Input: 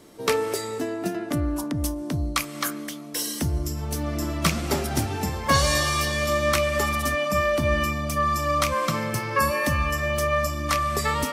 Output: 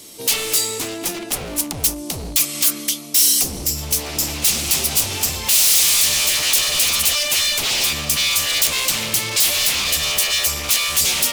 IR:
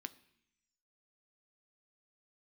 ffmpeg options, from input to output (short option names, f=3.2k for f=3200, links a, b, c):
-af "aeval=exprs='0.0501*(abs(mod(val(0)/0.0501+3,4)-2)-1)':c=same,aexciter=amount=5.9:drive=3.2:freq=2.3k,volume=1.5dB"